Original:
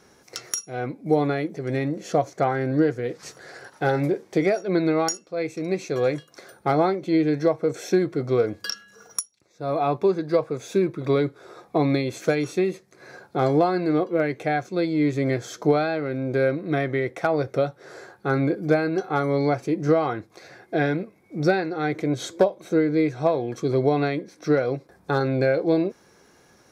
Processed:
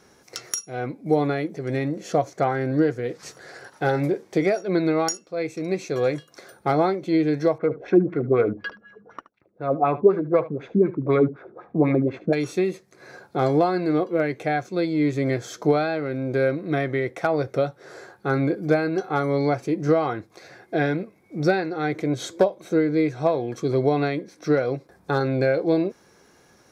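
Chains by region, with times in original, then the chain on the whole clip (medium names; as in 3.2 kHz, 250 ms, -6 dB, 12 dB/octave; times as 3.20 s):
7.58–12.33 s: median filter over 5 samples + LFO low-pass sine 4 Hz 210–2400 Hz + delay 74 ms -17 dB
whole clip: none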